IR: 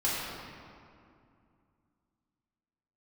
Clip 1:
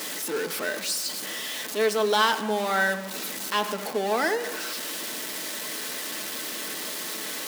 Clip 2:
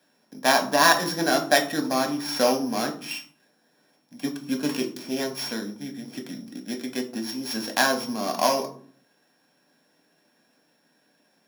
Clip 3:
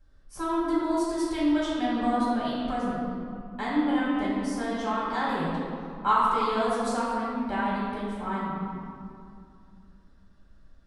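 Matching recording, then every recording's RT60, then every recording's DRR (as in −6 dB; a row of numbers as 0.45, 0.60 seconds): 3; non-exponential decay, 0.55 s, 2.4 s; 5.5, 4.0, −8.5 decibels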